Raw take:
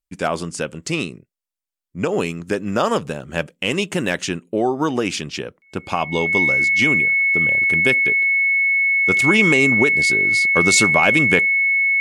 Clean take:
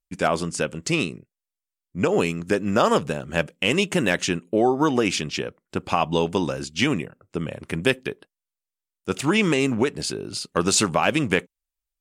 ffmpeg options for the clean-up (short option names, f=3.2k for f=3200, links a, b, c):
-af "bandreject=f=2.2k:w=30,asetnsamples=n=441:p=0,asendcmd='9.08 volume volume -3dB',volume=0dB"